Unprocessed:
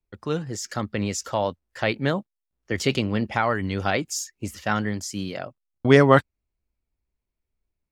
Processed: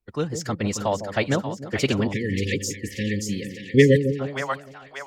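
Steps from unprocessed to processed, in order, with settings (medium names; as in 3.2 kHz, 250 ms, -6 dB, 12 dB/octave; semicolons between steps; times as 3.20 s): time stretch by phase-locked vocoder 0.64×; two-band feedback delay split 660 Hz, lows 153 ms, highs 584 ms, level -8 dB; spectral selection erased 2.13–4.20 s, 550–1700 Hz; trim +1.5 dB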